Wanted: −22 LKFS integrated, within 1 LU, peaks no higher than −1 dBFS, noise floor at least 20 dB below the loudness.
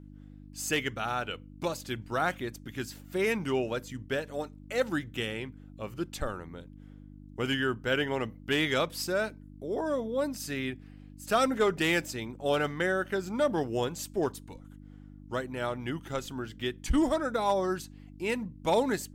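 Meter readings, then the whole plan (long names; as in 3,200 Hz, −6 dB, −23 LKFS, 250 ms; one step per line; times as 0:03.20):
mains hum 50 Hz; hum harmonics up to 300 Hz; level of the hum −46 dBFS; integrated loudness −31.0 LKFS; sample peak −15.0 dBFS; target loudness −22.0 LKFS
→ hum removal 50 Hz, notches 6
level +9 dB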